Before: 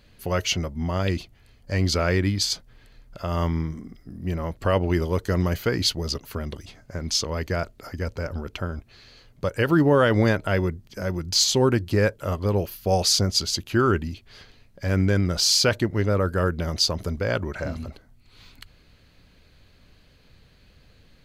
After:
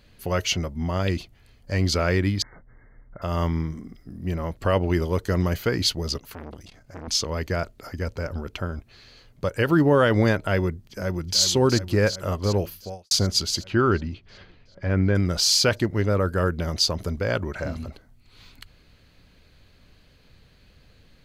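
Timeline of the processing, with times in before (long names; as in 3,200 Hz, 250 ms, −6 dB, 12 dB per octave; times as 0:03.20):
0:02.42–0:03.22: linear-phase brick-wall low-pass 2,200 Hz
0:06.19–0:07.08: saturating transformer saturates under 1,100 Hz
0:10.84–0:11.41: delay throw 370 ms, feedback 75%, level −9.5 dB
0:12.66–0:13.11: fade out quadratic
0:13.64–0:15.14: low-pass filter 4,400 Hz → 2,300 Hz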